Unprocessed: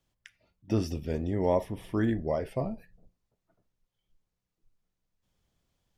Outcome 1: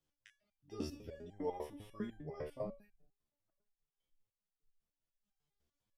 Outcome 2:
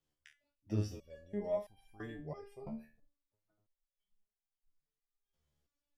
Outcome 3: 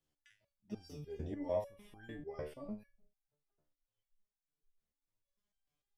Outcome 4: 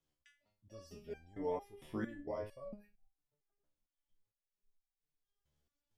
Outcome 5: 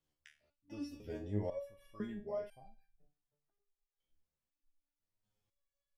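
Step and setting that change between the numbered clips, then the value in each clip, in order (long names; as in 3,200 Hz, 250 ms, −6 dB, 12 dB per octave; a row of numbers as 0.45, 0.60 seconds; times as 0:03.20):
step-sequenced resonator, speed: 10, 3, 6.7, 4.4, 2 Hertz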